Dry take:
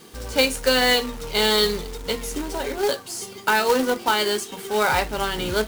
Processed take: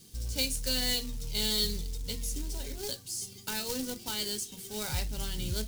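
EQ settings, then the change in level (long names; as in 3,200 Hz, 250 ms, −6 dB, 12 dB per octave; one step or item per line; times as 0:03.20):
drawn EQ curve 110 Hz 0 dB, 400 Hz −18 dB, 1,200 Hz −25 dB, 5,300 Hz −4 dB
0.0 dB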